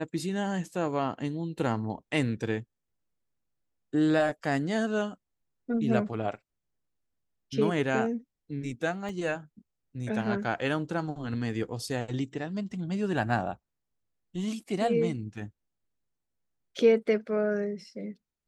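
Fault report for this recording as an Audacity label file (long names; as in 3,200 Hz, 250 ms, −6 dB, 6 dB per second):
9.090000	9.090000	drop-out 3.2 ms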